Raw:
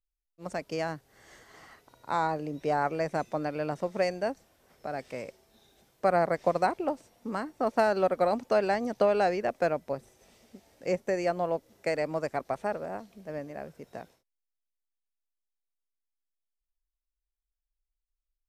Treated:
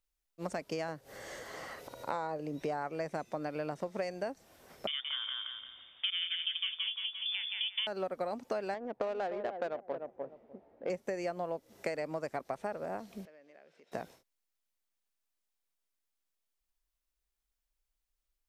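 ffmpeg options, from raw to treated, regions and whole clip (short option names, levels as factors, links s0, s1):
-filter_complex "[0:a]asettb=1/sr,asplit=3[s0][s1][s2];[s0]atrim=end=0.884[s3];[s1]atrim=start=0.88:end=2.41,asetpts=PTS-STARTPTS,afade=t=in:d=0.004:c=qsin,afade=t=out:st=1.526:d=0.004:c=qsin,equalizer=f=540:t=o:w=0.35:g=10.5,acompressor=mode=upward:threshold=0.00501:ratio=2.5:attack=3.2:release=140:knee=2.83:detection=peak[s4];[s2]atrim=start=2.406[s5];[s3][s4]acrossfade=d=0.004:c1=hsin:c2=qsin[s6];[s6][s5]acrossfade=d=0.004:c1=qsin:c2=hsin,asettb=1/sr,asplit=3[s7][s8][s9];[s7]atrim=end=4.874[s10];[s8]atrim=start=4.87:end=7.87,asetpts=PTS-STARTPTS,afade=t=in:d=0.004:c=qsin,afade=t=out:st=2.996:d=0.004:c=qsin,aecho=1:1:173|346|519|692|865:0.562|0.208|0.077|0.0285|0.0105,atrim=end_sample=132300,lowpass=f=3100:t=q:w=0.5098,lowpass=f=3100:t=q:w=0.6013,lowpass=f=3100:t=q:w=0.9,lowpass=f=3100:t=q:w=2.563,afreqshift=-3700[s11];[s9]atrim=start=7.866[s12];[s10][s11]acrossfade=d=0.004:c1=hsin:c2=qsin[s13];[s13][s12]acrossfade=d=0.004:c1=qsin:c2=hsin,asettb=1/sr,asplit=3[s14][s15][s16];[s14]atrim=end=8.744[s17];[s15]atrim=start=8.74:end=10.9,asetpts=PTS-STARTPTS,afade=t=in:d=0.004:c=qsin,afade=t=out:st=2.156:d=0.004:c=qsin,bass=f=250:g=-12,treble=f=4000:g=-5,asplit=2[s18][s19];[s19]adelay=299,lowpass=f=1000:p=1,volume=0.355,asplit=2[s20][s21];[s21]adelay=299,lowpass=f=1000:p=1,volume=0.17,asplit=2[s22][s23];[s23]adelay=299,lowpass=f=1000:p=1,volume=0.17[s24];[s18][s20][s22][s24]amix=inputs=4:normalize=0,atrim=end_sample=95256,adynamicsmooth=sensitivity=2:basefreq=760[s25];[s16]atrim=start=10.896[s26];[s17][s25]acrossfade=d=0.004:c1=hsin:c2=qsin[s27];[s27][s26]acrossfade=d=0.004:c1=qsin:c2=hsin,asettb=1/sr,asplit=3[s28][s29][s30];[s28]atrim=end=13.254[s31];[s29]atrim=start=13.25:end=13.92,asetpts=PTS-STARTPTS,afade=t=in:d=0.004:c=qsin,afade=t=out:st=0.666:d=0.004:c=qsin,acompressor=threshold=0.00501:ratio=16:attack=3.2:release=140:knee=1:detection=peak,highpass=660,lowpass=3200,equalizer=f=1000:t=o:w=1.7:g=-14[s32];[s30]atrim=start=13.916[s33];[s31][s32]acrossfade=d=0.004:c1=hsin:c2=qsin[s34];[s34][s33]acrossfade=d=0.004:c1=qsin:c2=hsin,lowshelf=f=86:g=-6.5,acompressor=threshold=0.01:ratio=6,volume=2"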